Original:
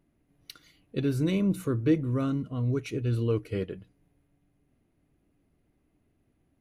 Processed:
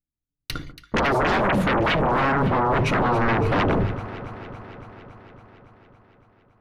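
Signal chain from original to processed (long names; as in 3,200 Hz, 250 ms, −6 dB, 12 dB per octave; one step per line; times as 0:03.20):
noise gate −55 dBFS, range −56 dB
RIAA equalisation playback
mains-hum notches 50/100/150/200/250/300/350/400/450 Hz
downward compressor 4 to 1, threshold −26 dBFS, peak gain reduction 11.5 dB
sine wavefolder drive 19 dB, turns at −17.5 dBFS
delay that swaps between a low-pass and a high-pass 140 ms, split 1,300 Hz, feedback 84%, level −13 dB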